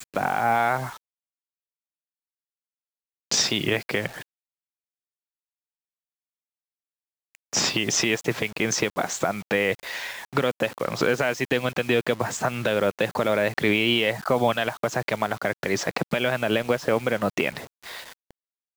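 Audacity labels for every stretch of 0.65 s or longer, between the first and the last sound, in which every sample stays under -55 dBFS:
0.970000	3.310000	silence
4.230000	7.350000	silence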